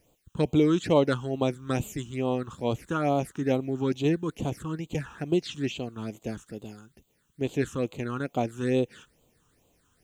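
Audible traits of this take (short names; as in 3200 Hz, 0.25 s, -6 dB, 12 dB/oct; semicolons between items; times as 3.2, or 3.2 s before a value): a quantiser's noise floor 12-bit, dither triangular; phasing stages 8, 2.3 Hz, lowest notch 610–1700 Hz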